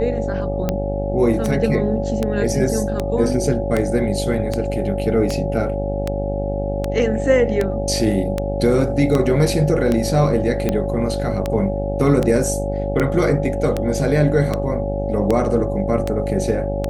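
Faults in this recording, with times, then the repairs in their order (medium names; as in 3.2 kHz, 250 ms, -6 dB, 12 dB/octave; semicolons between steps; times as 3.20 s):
buzz 50 Hz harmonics 17 -24 dBFS
tick 78 rpm -7 dBFS
whine 560 Hz -24 dBFS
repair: de-click; band-stop 560 Hz, Q 30; de-hum 50 Hz, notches 17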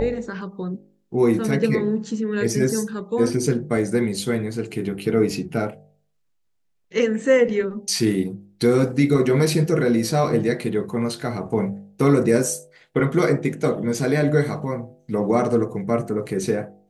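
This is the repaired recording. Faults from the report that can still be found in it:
nothing left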